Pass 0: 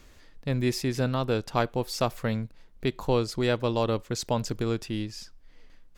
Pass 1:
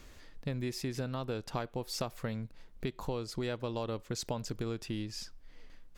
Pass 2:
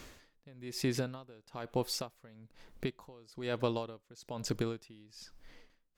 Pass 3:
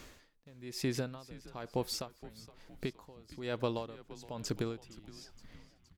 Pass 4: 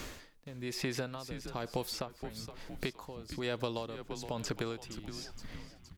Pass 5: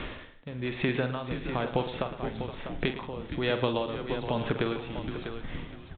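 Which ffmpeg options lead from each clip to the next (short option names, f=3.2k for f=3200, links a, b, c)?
-af "acompressor=threshold=-33dB:ratio=6"
-af "lowshelf=f=78:g=-10.5,aeval=exprs='val(0)*pow(10,-25*(0.5-0.5*cos(2*PI*1.1*n/s))/20)':c=same,volume=6.5dB"
-filter_complex "[0:a]asplit=6[a][b][c][d][e][f];[b]adelay=467,afreqshift=-97,volume=-17dB[g];[c]adelay=934,afreqshift=-194,volume=-22.2dB[h];[d]adelay=1401,afreqshift=-291,volume=-27.4dB[i];[e]adelay=1868,afreqshift=-388,volume=-32.6dB[j];[f]adelay=2335,afreqshift=-485,volume=-37.8dB[k];[a][g][h][i][j][k]amix=inputs=6:normalize=0,volume=-1.5dB"
-filter_complex "[0:a]acrossover=split=530|3300[a][b][c];[a]acompressor=threshold=-48dB:ratio=4[d];[b]acompressor=threshold=-48dB:ratio=4[e];[c]acompressor=threshold=-54dB:ratio=4[f];[d][e][f]amix=inputs=3:normalize=0,volume=9.5dB"
-filter_complex "[0:a]asplit=2[a][b];[b]aecho=0:1:47|110|177|648:0.316|0.224|0.119|0.335[c];[a][c]amix=inputs=2:normalize=0,aresample=8000,aresample=44100,volume=7.5dB"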